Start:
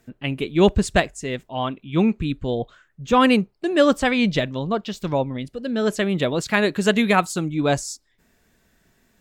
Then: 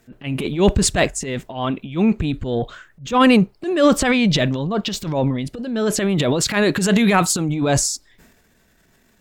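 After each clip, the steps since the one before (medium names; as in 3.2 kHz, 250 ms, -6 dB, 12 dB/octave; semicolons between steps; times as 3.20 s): transient shaper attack -10 dB, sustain +9 dB; trim +3.5 dB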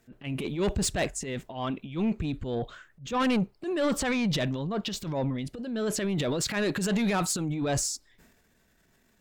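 saturation -13 dBFS, distortion -12 dB; trim -8 dB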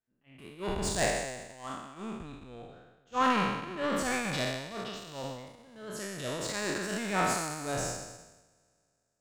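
spectral sustain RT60 2.76 s; peaking EQ 1.1 kHz +6.5 dB 2 oct; upward expansion 2.5:1, over -34 dBFS; trim -6.5 dB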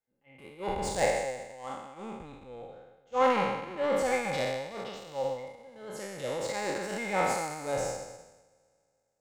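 small resonant body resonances 530/810/2100 Hz, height 16 dB, ringing for 50 ms; trim -4 dB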